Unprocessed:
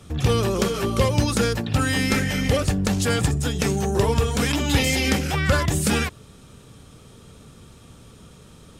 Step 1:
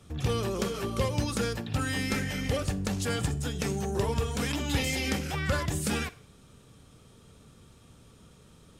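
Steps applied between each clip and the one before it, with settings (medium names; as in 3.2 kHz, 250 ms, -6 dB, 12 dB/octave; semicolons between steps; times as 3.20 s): Schroeder reverb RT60 0.47 s, combs from 33 ms, DRR 17 dB; trim -8.5 dB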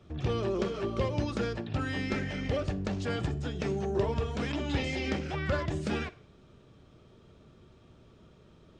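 Gaussian low-pass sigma 1.7 samples; small resonant body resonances 360/620 Hz, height 8 dB; trim -2.5 dB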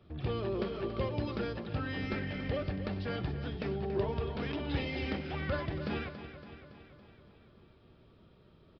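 on a send: feedback delay 281 ms, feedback 60%, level -11.5 dB; on the sum: resampled via 11.025 kHz; trim -4 dB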